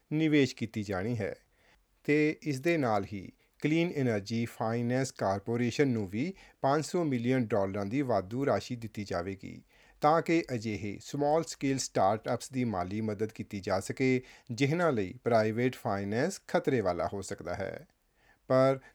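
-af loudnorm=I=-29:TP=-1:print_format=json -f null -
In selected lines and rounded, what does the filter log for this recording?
"input_i" : "-31.2",
"input_tp" : "-11.3",
"input_lra" : "1.6",
"input_thresh" : "-41.6",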